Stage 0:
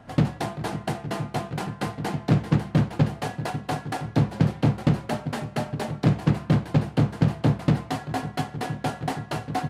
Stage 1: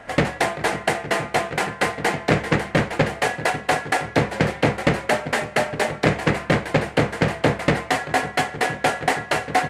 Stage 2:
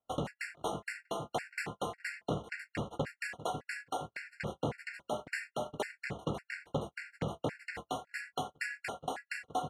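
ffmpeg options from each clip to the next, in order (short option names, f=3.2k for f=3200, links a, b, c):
-af "equalizer=f=125:t=o:w=1:g=-9,equalizer=f=250:t=o:w=1:g=-4,equalizer=f=500:t=o:w=1:g=7,equalizer=f=2k:t=o:w=1:g=12,equalizer=f=8k:t=o:w=1:g=7,volume=4.5dB"
-af "alimiter=limit=-14.5dB:level=0:latency=1:release=475,agate=range=-40dB:threshold=-31dB:ratio=16:detection=peak,afftfilt=real='re*gt(sin(2*PI*1.8*pts/sr)*(1-2*mod(floor(b*sr/1024/1400),2)),0)':imag='im*gt(sin(2*PI*1.8*pts/sr)*(1-2*mod(floor(b*sr/1024/1400),2)),0)':win_size=1024:overlap=0.75,volume=-6.5dB"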